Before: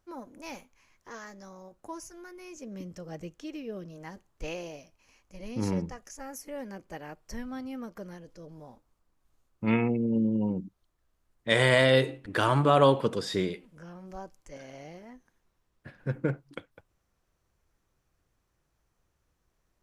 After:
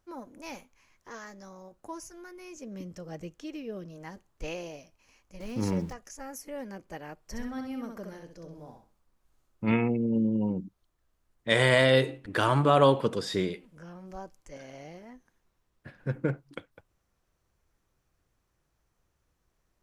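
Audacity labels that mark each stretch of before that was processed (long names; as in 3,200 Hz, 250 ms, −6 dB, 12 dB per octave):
5.400000	5.930000	converter with a step at zero of −46 dBFS
7.210000	9.720000	repeating echo 65 ms, feedback 26%, level −5 dB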